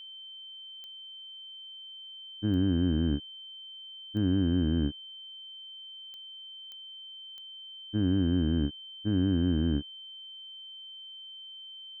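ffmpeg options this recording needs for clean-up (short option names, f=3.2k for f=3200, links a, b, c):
-af "adeclick=t=4,bandreject=f=3.1k:w=30,agate=range=-21dB:threshold=-38dB"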